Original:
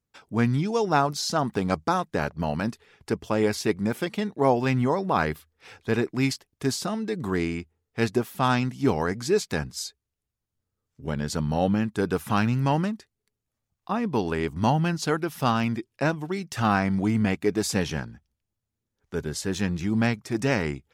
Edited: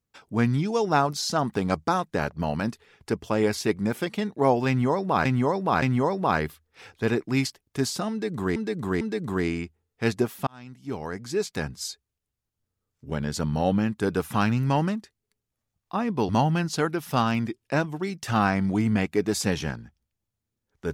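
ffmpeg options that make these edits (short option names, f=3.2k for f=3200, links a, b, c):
-filter_complex "[0:a]asplit=7[a][b][c][d][e][f][g];[a]atrim=end=5.252[h];[b]atrim=start=4.678:end=5.252[i];[c]atrim=start=4.678:end=7.422[j];[d]atrim=start=6.968:end=7.422[k];[e]atrim=start=6.968:end=8.43,asetpts=PTS-STARTPTS,afade=t=out:st=1.458:d=0.004:c=hsin[l];[f]atrim=start=8.43:end=14.252,asetpts=PTS-STARTPTS,afade=t=in:d=1.43[m];[g]atrim=start=14.578[n];[h][i]acrossfade=d=0.004:c1=hsin:c2=hsin[o];[o][j]acrossfade=d=0.004:c1=hsin:c2=hsin[p];[p][k]acrossfade=d=0.004:c1=hsin:c2=hsin[q];[l][m]concat=n=2:v=0:a=1[r];[q][r]acrossfade=d=0.004:c1=hsin:c2=hsin[s];[s][n]acrossfade=d=0.004:c1=hsin:c2=hsin"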